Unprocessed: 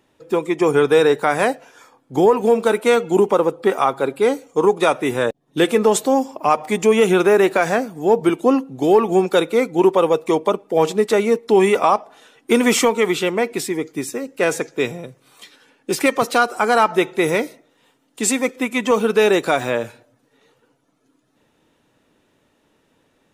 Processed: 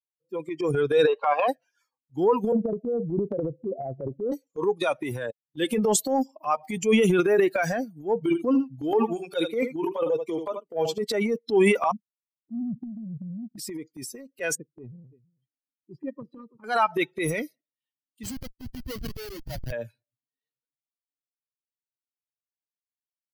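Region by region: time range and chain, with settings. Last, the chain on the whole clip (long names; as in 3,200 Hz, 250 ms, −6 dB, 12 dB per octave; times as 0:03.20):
0:01.07–0:01.48: mu-law and A-law mismatch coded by mu + loudspeaker in its box 480–4,500 Hz, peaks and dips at 510 Hz +6 dB, 780 Hz +4 dB, 1,100 Hz +9 dB, 1,900 Hz −8 dB, 2,700 Hz +6 dB, 4,000 Hz −3 dB + notch filter 1,500 Hz, Q 8.7
0:02.52–0:04.32: Chebyshev low-pass filter 710 Hz, order 5 + low-shelf EQ 260 Hz +10.5 dB + downward compressor 12 to 1, threshold −12 dBFS
0:08.19–0:11.02: notch comb filter 190 Hz + single-tap delay 77 ms −9 dB
0:11.91–0:13.58: inverse Chebyshev low-pass filter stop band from 1,200 Hz, stop band 80 dB + leveller curve on the samples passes 2
0:14.55–0:16.64: moving average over 60 samples + single-tap delay 329 ms −13.5 dB
0:18.23–0:19.72: flanger 1.7 Hz, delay 2.8 ms, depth 9.6 ms, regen −79% + comparator with hysteresis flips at −20.5 dBFS
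whole clip: spectral dynamics exaggerated over time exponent 2; transient designer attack −6 dB, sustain +9 dB; level −2.5 dB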